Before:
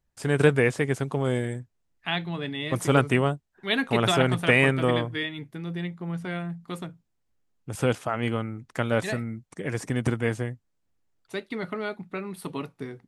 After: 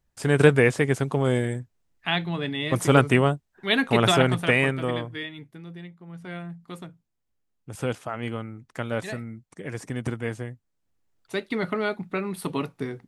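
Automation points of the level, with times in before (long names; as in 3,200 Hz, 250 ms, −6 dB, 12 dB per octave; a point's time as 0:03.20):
0:04.12 +3 dB
0:04.83 −4 dB
0:05.35 −4 dB
0:06.06 −11.5 dB
0:06.32 −4 dB
0:10.46 −4 dB
0:11.50 +5 dB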